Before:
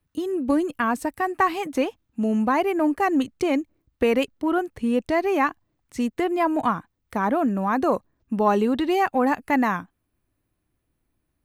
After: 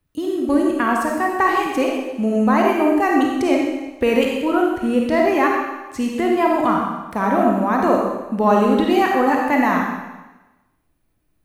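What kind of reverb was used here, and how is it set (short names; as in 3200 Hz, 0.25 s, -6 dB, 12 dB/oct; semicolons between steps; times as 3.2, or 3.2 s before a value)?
digital reverb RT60 1.1 s, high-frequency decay 1×, pre-delay 10 ms, DRR -1 dB; gain +2 dB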